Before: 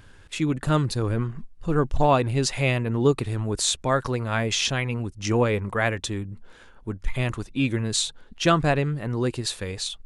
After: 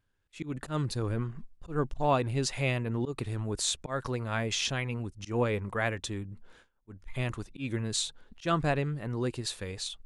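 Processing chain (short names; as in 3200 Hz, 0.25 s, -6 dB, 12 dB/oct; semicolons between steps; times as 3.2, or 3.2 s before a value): gate with hold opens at -38 dBFS; auto swell 0.138 s; gain -6.5 dB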